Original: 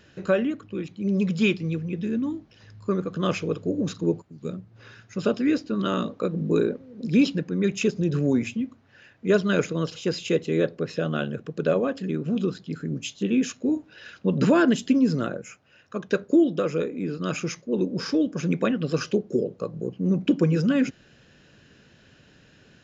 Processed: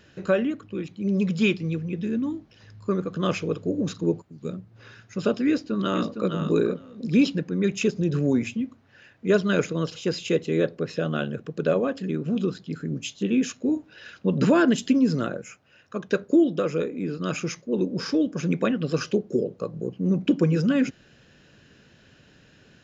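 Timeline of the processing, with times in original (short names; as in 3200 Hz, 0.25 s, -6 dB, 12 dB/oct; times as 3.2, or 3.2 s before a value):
5.49–6.32 echo throw 0.46 s, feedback 10%, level -7 dB
14.78–15.44 mismatched tape noise reduction encoder only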